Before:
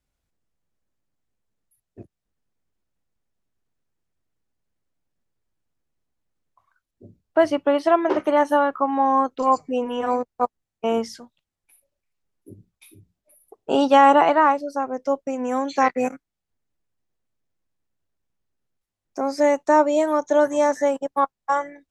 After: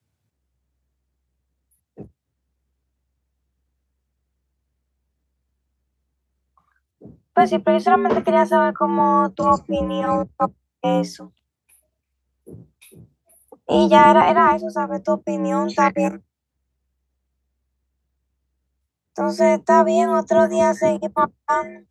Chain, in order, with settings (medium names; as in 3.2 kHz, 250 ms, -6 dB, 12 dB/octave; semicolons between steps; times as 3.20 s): octave divider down 1 oct, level +1 dB; frequency shift +64 Hz; trim +2 dB